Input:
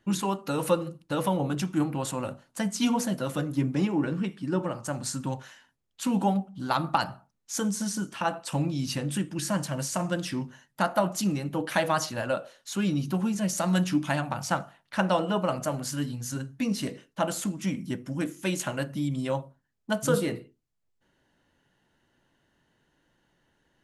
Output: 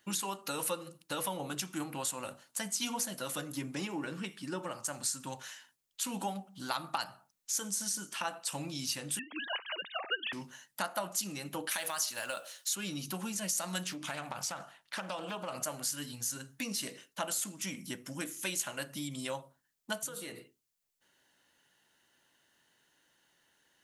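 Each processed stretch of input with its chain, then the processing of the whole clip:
9.19–10.33 s: formants replaced by sine waves + tilt EQ +4 dB/octave
11.71–12.75 s: tilt EQ +2 dB/octave + compression 3:1, threshold -26 dBFS + companded quantiser 8-bit
13.86–15.55 s: treble shelf 9.6 kHz -7 dB + compression 5:1, threshold -28 dBFS + loudspeaker Doppler distortion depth 0.22 ms
19.98–20.38 s: band-stop 5.1 kHz, Q 9.4 + compression 4:1, threshold -36 dBFS
whole clip: tilt EQ +3.5 dB/octave; compression 2:1, threshold -35 dBFS; trim -2 dB

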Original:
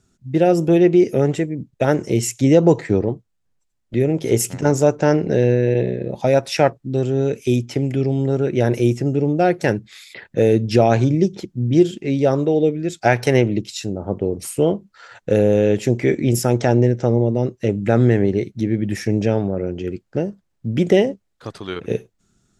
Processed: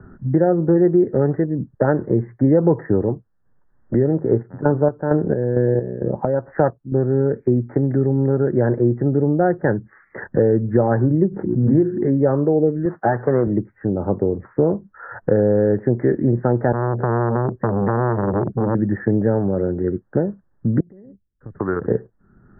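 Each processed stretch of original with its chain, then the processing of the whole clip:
4.20–6.92 s: low-pass 1.7 kHz 24 dB/octave + square tremolo 2.2 Hz, depth 60%
11.31–12.22 s: hum notches 60/120/180/240/300/360 Hz + swell ahead of each attack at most 47 dB/s
12.85–13.47 s: CVSD coder 32 kbps + high-pass 140 Hz
16.72–18.75 s: bass shelf 490 Hz +10.5 dB + compression 3:1, threshold -15 dBFS + transformer saturation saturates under 1 kHz
20.80–21.60 s: amplifier tone stack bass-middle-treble 10-0-1 + compression 10:1, threshold -45 dBFS
whole clip: steep low-pass 1.8 kHz 96 dB/octave; band-stop 680 Hz, Q 15; three bands compressed up and down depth 70%

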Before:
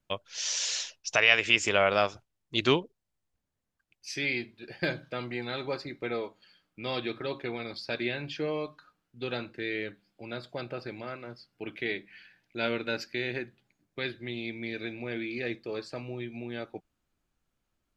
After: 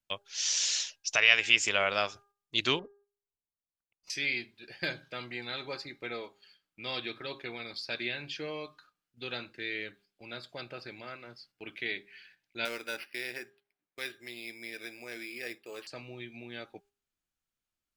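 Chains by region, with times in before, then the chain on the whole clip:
2.79–4.10 s: waveshaping leveller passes 3 + Savitzky-Golay filter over 65 samples + compression 2.5:1, threshold -37 dBFS
12.65–15.87 s: careless resampling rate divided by 6×, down none, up hold + tone controls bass -12 dB, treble -12 dB
whole clip: tilt shelf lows -5.5 dB, about 1.4 kHz; de-hum 404.1 Hz, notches 4; gate -57 dBFS, range -7 dB; trim -3 dB

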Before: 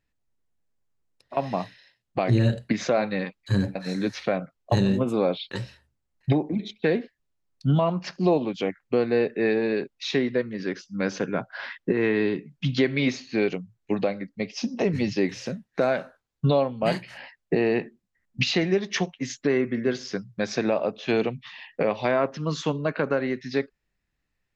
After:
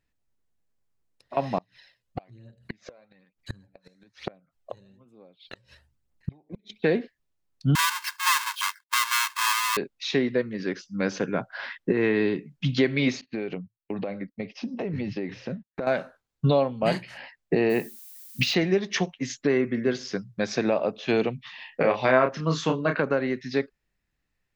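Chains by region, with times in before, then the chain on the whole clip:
1.58–6.70 s: inverted gate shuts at -20 dBFS, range -33 dB + phaser 1.1 Hz, delay 2.1 ms, feedback 44%
7.75–9.77 s: square wave that keeps the level + brick-wall FIR high-pass 860 Hz + comb 1.9 ms, depth 63%
13.21–15.87 s: gate -46 dBFS, range -24 dB + compression 10:1, threshold -25 dBFS + distance through air 240 m
17.69–18.53 s: high-pass 78 Hz + added noise violet -46 dBFS
21.57–23.00 s: dynamic bell 1.5 kHz, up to +5 dB, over -40 dBFS, Q 1.2 + doubling 31 ms -5.5 dB
whole clip: none

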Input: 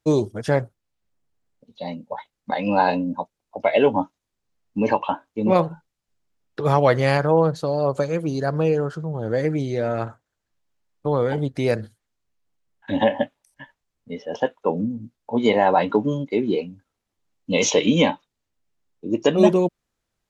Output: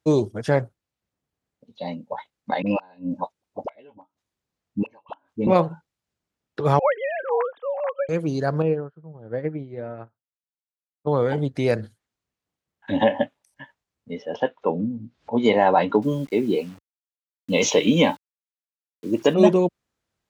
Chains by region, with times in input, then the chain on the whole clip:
2.62–5.47 s: inverted gate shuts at -12 dBFS, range -33 dB + phase dispersion highs, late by 45 ms, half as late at 530 Hz
6.79–8.09 s: formants replaced by sine waves + high-pass 920 Hz 6 dB/octave + dynamic bell 2.6 kHz, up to -4 dB, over -39 dBFS, Q 1.4
8.62–11.07 s: distance through air 410 m + upward expansion 2.5:1, over -38 dBFS
14.31–15.32 s: Chebyshev low-pass 4 kHz + upward compressor, threshold -33 dBFS
16.02–19.34 s: high-pass 42 Hz 6 dB/octave + word length cut 8-bit, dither none
whole clip: high-pass 60 Hz; treble shelf 6.9 kHz -4.5 dB

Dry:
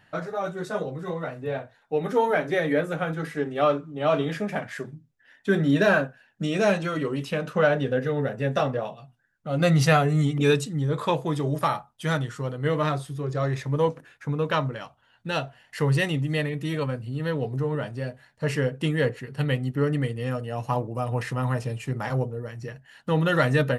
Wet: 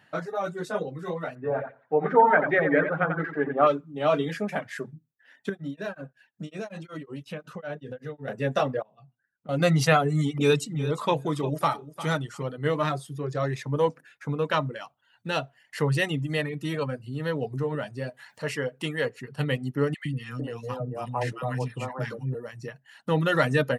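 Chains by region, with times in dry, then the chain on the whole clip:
1.35–3.67 s: LFO low-pass sine 4.4 Hz 890–2000 Hz + feedback delay 88 ms, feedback 26%, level -5 dB
5.49–8.28 s: bass shelf 110 Hz +11.5 dB + compression 2:1, threshold -38 dBFS + tremolo of two beating tones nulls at 5.4 Hz
8.82–9.49 s: low-pass 1 kHz 6 dB/octave + compression 16:1, threshold -44 dBFS
10.15–12.43 s: band-stop 1.7 kHz, Q 9.7 + feedback delay 351 ms, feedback 18%, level -14 dB
18.09–19.15 s: bass shelf 420 Hz -7.5 dB + upward compressor, threshold -35 dBFS
19.94–22.35 s: treble shelf 10 kHz -10 dB + three bands offset in time highs, lows, mids 110/450 ms, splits 300/1200 Hz
whole clip: reverb removal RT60 0.51 s; high-pass 130 Hz

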